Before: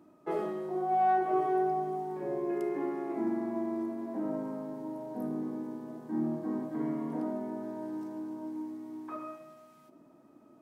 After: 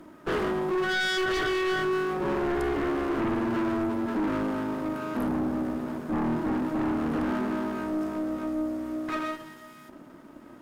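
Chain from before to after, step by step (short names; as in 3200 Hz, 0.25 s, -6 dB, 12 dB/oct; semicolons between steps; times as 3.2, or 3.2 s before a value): minimum comb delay 0.6 ms; low shelf 77 Hz -8.5 dB; in parallel at -7 dB: sine folder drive 13 dB, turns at -20.5 dBFS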